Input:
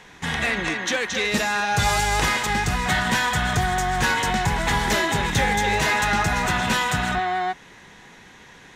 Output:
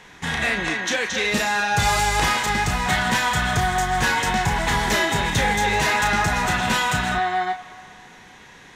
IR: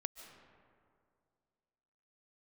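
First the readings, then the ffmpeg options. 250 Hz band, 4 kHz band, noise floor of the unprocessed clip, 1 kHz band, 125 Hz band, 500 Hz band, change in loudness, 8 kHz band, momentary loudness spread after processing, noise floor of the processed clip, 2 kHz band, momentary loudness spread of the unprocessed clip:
0.0 dB, +1.0 dB, −47 dBFS, +1.5 dB, 0.0 dB, +0.5 dB, +1.0 dB, +1.0 dB, 4 LU, −46 dBFS, +1.0 dB, 4 LU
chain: -filter_complex "[0:a]asplit=2[link_01][link_02];[link_02]highpass=frequency=620:width=0.5412,highpass=frequency=620:width=1.3066[link_03];[1:a]atrim=start_sample=2205,adelay=33[link_04];[link_03][link_04]afir=irnorm=-1:irlink=0,volume=-3dB[link_05];[link_01][link_05]amix=inputs=2:normalize=0"

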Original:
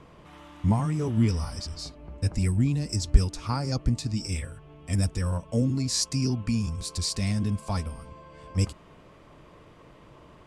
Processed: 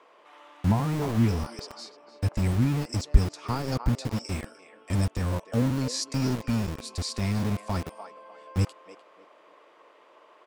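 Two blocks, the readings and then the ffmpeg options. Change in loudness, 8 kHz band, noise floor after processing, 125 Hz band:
−0.5 dB, −5.5 dB, −57 dBFS, −1.0 dB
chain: -filter_complex "[0:a]highshelf=frequency=5100:gain=-9,acrossover=split=410[link_01][link_02];[link_01]aeval=exprs='val(0)*gte(abs(val(0)),0.0355)':channel_layout=same[link_03];[link_02]asplit=2[link_04][link_05];[link_05]adelay=300,lowpass=frequency=1200:poles=1,volume=-5dB,asplit=2[link_06][link_07];[link_07]adelay=300,lowpass=frequency=1200:poles=1,volume=0.36,asplit=2[link_08][link_09];[link_09]adelay=300,lowpass=frequency=1200:poles=1,volume=0.36,asplit=2[link_10][link_11];[link_11]adelay=300,lowpass=frequency=1200:poles=1,volume=0.36[link_12];[link_04][link_06][link_08][link_10][link_12]amix=inputs=5:normalize=0[link_13];[link_03][link_13]amix=inputs=2:normalize=0"

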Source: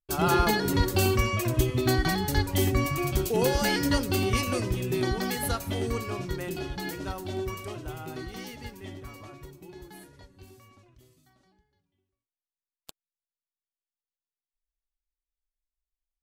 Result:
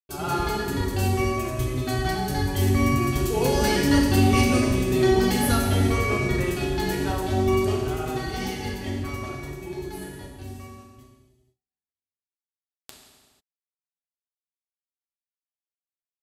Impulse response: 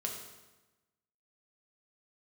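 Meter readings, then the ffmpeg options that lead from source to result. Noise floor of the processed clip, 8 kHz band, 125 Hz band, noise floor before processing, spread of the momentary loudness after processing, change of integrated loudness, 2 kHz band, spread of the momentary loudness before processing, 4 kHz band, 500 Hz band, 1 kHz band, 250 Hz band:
below −85 dBFS, +2.5 dB, +5.0 dB, below −85 dBFS, 15 LU, +4.0 dB, +3.0 dB, 18 LU, +2.0 dB, +4.5 dB, +3.5 dB, +6.5 dB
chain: -filter_complex "[0:a]agate=range=-46dB:threshold=-55dB:ratio=16:detection=peak,dynaudnorm=framelen=310:gausssize=21:maxgain=13dB[link_01];[1:a]atrim=start_sample=2205,afade=type=out:start_time=0.35:duration=0.01,atrim=end_sample=15876,asetrate=26460,aresample=44100[link_02];[link_01][link_02]afir=irnorm=-1:irlink=0,volume=-7.5dB"

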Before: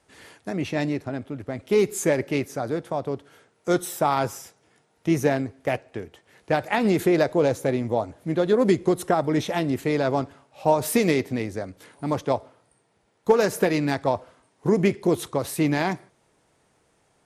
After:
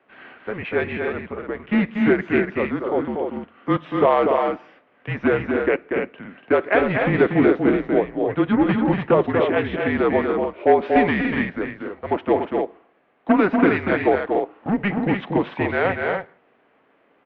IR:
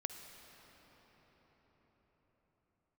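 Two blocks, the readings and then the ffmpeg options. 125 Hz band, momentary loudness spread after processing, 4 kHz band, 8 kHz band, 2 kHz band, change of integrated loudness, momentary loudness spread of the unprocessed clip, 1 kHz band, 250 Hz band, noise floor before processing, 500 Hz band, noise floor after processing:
+0.5 dB, 12 LU, −2.0 dB, below −35 dB, +7.5 dB, +3.5 dB, 12 LU, +4.0 dB, +4.5 dB, −66 dBFS, +3.5 dB, −60 dBFS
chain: -af "volume=12.5dB,asoftclip=hard,volume=-12.5dB,aecho=1:1:239.1|288.6:0.562|0.501,highpass=frequency=480:width_type=q:width=0.5412,highpass=frequency=480:width_type=q:width=1.307,lowpass=frequency=3000:width_type=q:width=0.5176,lowpass=frequency=3000:width_type=q:width=0.7071,lowpass=frequency=3000:width_type=q:width=1.932,afreqshift=-200,volume=6.5dB"

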